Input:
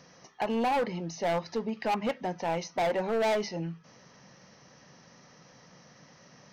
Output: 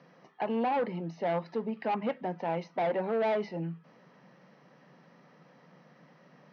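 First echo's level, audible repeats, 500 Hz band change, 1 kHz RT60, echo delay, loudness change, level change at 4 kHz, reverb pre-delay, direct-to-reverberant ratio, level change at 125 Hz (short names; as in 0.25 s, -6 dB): none, none, -1.0 dB, none, none, -1.5 dB, -9.0 dB, none, none, -0.5 dB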